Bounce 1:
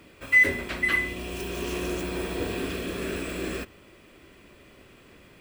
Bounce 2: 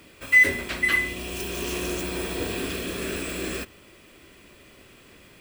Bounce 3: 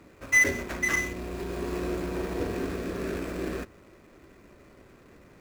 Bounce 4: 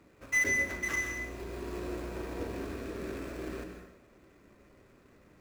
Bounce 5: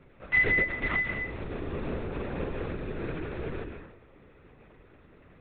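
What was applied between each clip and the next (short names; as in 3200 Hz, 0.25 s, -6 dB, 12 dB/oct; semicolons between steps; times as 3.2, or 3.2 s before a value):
high shelf 3100 Hz +7.5 dB
median filter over 15 samples
plate-style reverb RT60 0.82 s, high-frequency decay 0.85×, pre-delay 0.115 s, DRR 5 dB; gain -7.5 dB
LPC vocoder at 8 kHz whisper; gain +4.5 dB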